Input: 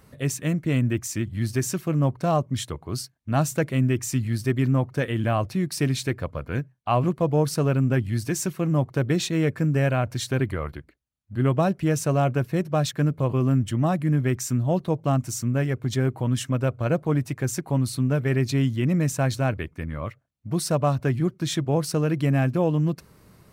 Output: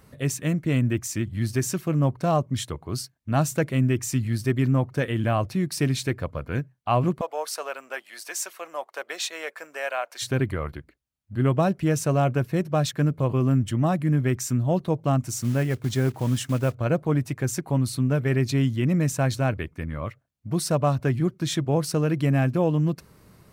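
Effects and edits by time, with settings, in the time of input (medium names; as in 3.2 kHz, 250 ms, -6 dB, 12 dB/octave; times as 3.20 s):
7.21–10.22 s: high-pass 610 Hz 24 dB/octave
15.33–16.76 s: block-companded coder 5-bit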